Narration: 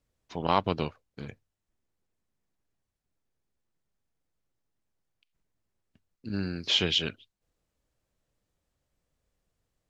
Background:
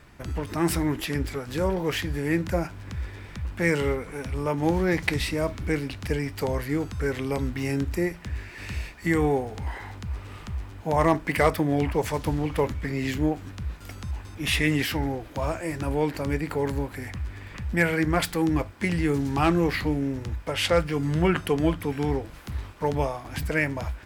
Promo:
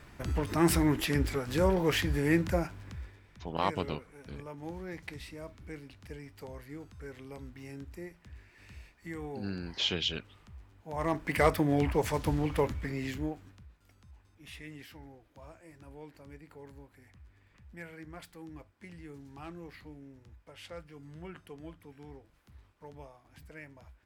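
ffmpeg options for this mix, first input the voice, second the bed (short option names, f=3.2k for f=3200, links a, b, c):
-filter_complex "[0:a]adelay=3100,volume=-5.5dB[a];[1:a]volume=13.5dB,afade=t=out:st=2.27:d=0.94:silence=0.141254,afade=t=in:st=10.87:d=0.62:silence=0.188365,afade=t=out:st=12.51:d=1.17:silence=0.1[b];[a][b]amix=inputs=2:normalize=0"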